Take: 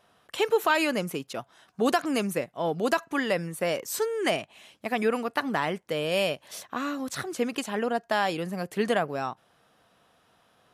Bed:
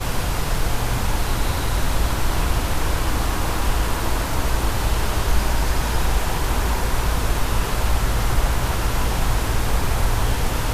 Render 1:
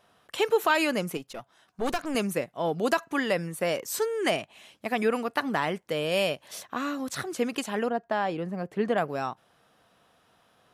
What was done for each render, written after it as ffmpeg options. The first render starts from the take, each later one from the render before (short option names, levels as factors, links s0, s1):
-filter_complex "[0:a]asettb=1/sr,asplit=3[s0][s1][s2];[s0]atrim=end=1.174[s3];[s1]atrim=start=1.17:end=2.15,asetpts=PTS-STARTPTS,afade=t=in:d=0.004:c=qsin,afade=t=out:st=0.976:d=0.004:c=qsin,aeval=exprs='(tanh(12.6*val(0)+0.75)-tanh(0.75))/12.6':c=same[s4];[s2]atrim=start=2.146[s5];[s3][s4]acrossfade=d=0.004:c1=hsin:c2=qsin[s6];[s6][s5]acrossfade=d=0.004:c1=qsin:c2=hsin,asettb=1/sr,asplit=3[s7][s8][s9];[s7]atrim=end=7.894[s10];[s8]atrim=start=7.89:end=8.98,asetpts=PTS-STARTPTS,afade=t=in:d=0.004:c=qsin,afade=t=out:st=1.086:d=0.004:c=qsin,lowpass=f=1200:p=1[s11];[s9]atrim=start=8.976[s12];[s10][s11]acrossfade=d=0.004:c1=hsin:c2=qsin[s13];[s13][s12]acrossfade=d=0.004:c1=qsin:c2=hsin"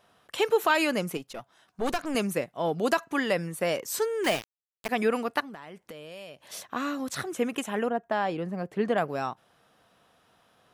-filter_complex "[0:a]asettb=1/sr,asplit=3[s0][s1][s2];[s0]atrim=end=4.244[s3];[s1]atrim=start=4.24:end=4.89,asetpts=PTS-STARTPTS,afade=t=in:d=0.004:c=qsin,afade=t=out:st=0.646:d=0.004:c=qsin,aeval=exprs='val(0)*gte(abs(val(0)),0.0355)':c=same[s4];[s2]atrim=start=4.886[s5];[s3][s4]acrossfade=d=0.004:c1=hsin:c2=qsin[s6];[s6][s5]acrossfade=d=0.004:c1=qsin:c2=hsin,asettb=1/sr,asplit=3[s7][s8][s9];[s7]atrim=end=5.404[s10];[s8]atrim=start=5.4:end=6.46,asetpts=PTS-STARTPTS,afade=t=in:d=0.004:c=qsin,afade=t=out:st=1.056:d=0.004:c=qsin,acompressor=threshold=0.00891:ratio=5:attack=3.2:release=140:knee=1:detection=peak[s11];[s9]atrim=start=6.456[s12];[s10][s11]acrossfade=d=0.004:c1=hsin:c2=qsin[s13];[s13][s12]acrossfade=d=0.004:c1=qsin:c2=hsin,asettb=1/sr,asplit=3[s14][s15][s16];[s14]atrim=end=7.304[s17];[s15]atrim=start=7.3:end=8.12,asetpts=PTS-STARTPTS,afade=t=in:d=0.004:c=qsin,afade=t=out:st=0.816:d=0.004:c=qsin,equalizer=f=4600:t=o:w=0.34:g=-14.5[s18];[s16]atrim=start=8.116[s19];[s17][s18]acrossfade=d=0.004:c1=hsin:c2=qsin[s20];[s20][s19]acrossfade=d=0.004:c1=qsin:c2=hsin"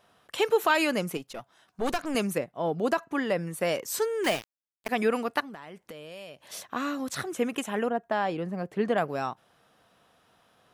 -filter_complex "[0:a]asettb=1/sr,asplit=3[s0][s1][s2];[s0]atrim=end=2.384[s3];[s1]atrim=start=2.38:end=3.47,asetpts=PTS-STARTPTS,afade=t=in:d=0.004:c=qsin,afade=t=out:st=1.086:d=0.004:c=qsin,highshelf=f=2000:g=-8[s4];[s2]atrim=start=3.466[s5];[s3][s4]acrossfade=d=0.004:c1=hsin:c2=qsin[s6];[s6][s5]acrossfade=d=0.004:c1=qsin:c2=hsin,asplit=2[s7][s8];[s7]atrim=end=4.86,asetpts=PTS-STARTPTS,afade=t=out:st=4.26:d=0.6:silence=0.0749894[s9];[s8]atrim=start=4.86,asetpts=PTS-STARTPTS,afade=t=in:d=0.004:c=hsin:silence=0.0749894[s10];[s9][s10]concat=n=2:v=0:a=1"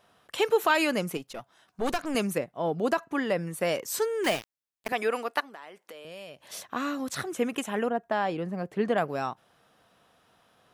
-filter_complex "[0:a]asettb=1/sr,asplit=3[s0][s1][s2];[s0]atrim=end=4.924[s3];[s1]atrim=start=4.92:end=6.05,asetpts=PTS-STARTPTS,afade=t=in:d=0.004:c=qsin,afade=t=out:st=1.126:d=0.004:c=qsin,highpass=400[s4];[s2]atrim=start=6.046[s5];[s3][s4]acrossfade=d=0.004:c1=hsin:c2=qsin[s6];[s6][s5]acrossfade=d=0.004:c1=qsin:c2=hsin"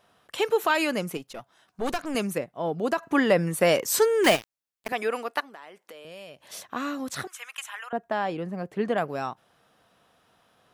-filter_complex "[0:a]asplit=3[s0][s1][s2];[s0]afade=t=out:st=3.02:d=0.02[s3];[s1]acontrast=84,afade=t=in:st=3.02:d=0.02,afade=t=out:st=4.35:d=0.02[s4];[s2]afade=t=in:st=4.35:d=0.02[s5];[s3][s4][s5]amix=inputs=3:normalize=0,asettb=1/sr,asplit=3[s6][s7][s8];[s6]atrim=end=7.274[s9];[s7]atrim=start=7.27:end=7.93,asetpts=PTS-STARTPTS,afade=t=in:d=0.004:c=qsin,afade=t=out:st=0.656:d=0.004:c=qsin,highpass=f=1100:w=0.5412,highpass=f=1100:w=1.3066[s10];[s8]atrim=start=7.926[s11];[s9][s10]acrossfade=d=0.004:c1=hsin:c2=qsin[s12];[s12][s11]acrossfade=d=0.004:c1=qsin:c2=hsin"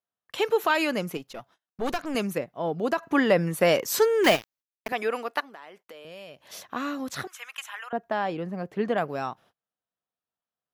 -af "agate=range=0.0224:threshold=0.002:ratio=16:detection=peak,equalizer=f=8800:t=o:w=0.47:g=-7.5"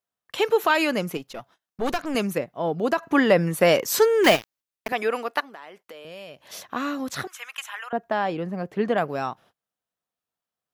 -af "volume=1.41"